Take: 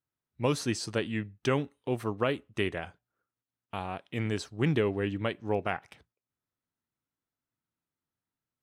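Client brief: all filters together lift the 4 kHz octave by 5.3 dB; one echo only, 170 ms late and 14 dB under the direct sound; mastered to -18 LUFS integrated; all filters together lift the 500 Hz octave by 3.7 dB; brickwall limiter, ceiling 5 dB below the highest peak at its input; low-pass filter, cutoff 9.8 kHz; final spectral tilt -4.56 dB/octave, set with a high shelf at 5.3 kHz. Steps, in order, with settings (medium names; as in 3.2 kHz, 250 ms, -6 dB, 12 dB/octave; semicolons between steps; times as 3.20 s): low-pass 9.8 kHz; peaking EQ 500 Hz +4.5 dB; peaking EQ 4 kHz +8.5 dB; treble shelf 5.3 kHz -3 dB; peak limiter -16 dBFS; delay 170 ms -14 dB; trim +13 dB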